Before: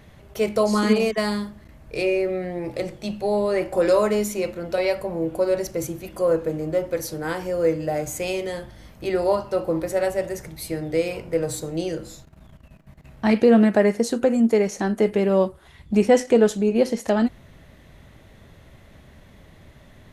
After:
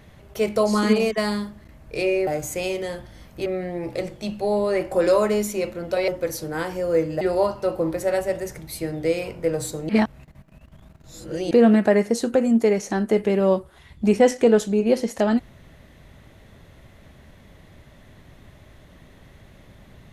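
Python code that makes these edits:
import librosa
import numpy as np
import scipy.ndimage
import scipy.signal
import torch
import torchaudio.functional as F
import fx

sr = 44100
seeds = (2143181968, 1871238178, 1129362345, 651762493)

y = fx.edit(x, sr, fx.cut(start_s=4.89, length_s=1.89),
    fx.move(start_s=7.91, length_s=1.19, to_s=2.27),
    fx.reverse_span(start_s=11.78, length_s=1.62), tone=tone)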